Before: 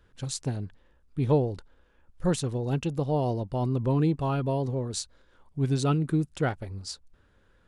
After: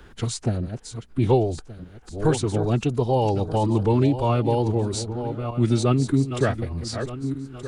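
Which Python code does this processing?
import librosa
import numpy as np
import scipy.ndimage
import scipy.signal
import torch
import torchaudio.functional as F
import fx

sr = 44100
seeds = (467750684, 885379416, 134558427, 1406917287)

y = fx.reverse_delay_fb(x, sr, ms=612, feedback_pct=42, wet_db=-11.5)
y = fx.pitch_keep_formants(y, sr, semitones=-2.5)
y = fx.band_squash(y, sr, depth_pct=40)
y = F.gain(torch.from_numpy(y), 5.5).numpy()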